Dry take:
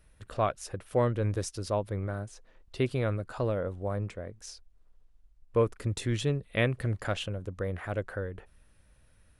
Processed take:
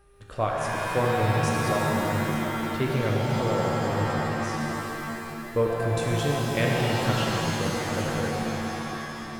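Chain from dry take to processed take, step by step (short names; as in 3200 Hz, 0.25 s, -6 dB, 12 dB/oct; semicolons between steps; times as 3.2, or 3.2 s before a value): buzz 400 Hz, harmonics 4, -62 dBFS; shimmer reverb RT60 3.4 s, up +7 st, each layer -2 dB, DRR -2 dB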